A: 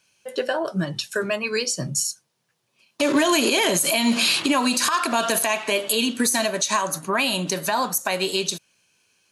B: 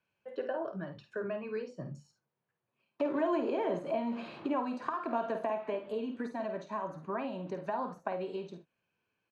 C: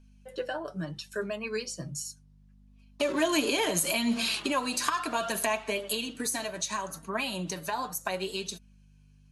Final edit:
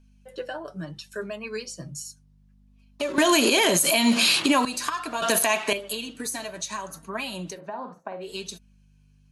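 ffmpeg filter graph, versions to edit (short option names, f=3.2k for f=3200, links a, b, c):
-filter_complex "[0:a]asplit=2[a][b];[2:a]asplit=4[c][d][e][f];[c]atrim=end=3.182[g];[a]atrim=start=3.178:end=4.652[h];[d]atrim=start=4.648:end=5.222[i];[b]atrim=start=5.218:end=5.732[j];[e]atrim=start=5.728:end=7.62[k];[1:a]atrim=start=7.46:end=8.36[l];[f]atrim=start=8.2[m];[g][h]acrossfade=d=0.004:c1=hsin:c2=hsin[n];[n][i]acrossfade=d=0.004:c1=hsin:c2=hsin[o];[o][j]acrossfade=d=0.004:c1=hsin:c2=hsin[p];[p][k]acrossfade=d=0.004:c1=hsin:c2=hsin[q];[q][l]acrossfade=d=0.16:c1=tri:c2=tri[r];[r][m]acrossfade=d=0.16:c1=tri:c2=tri"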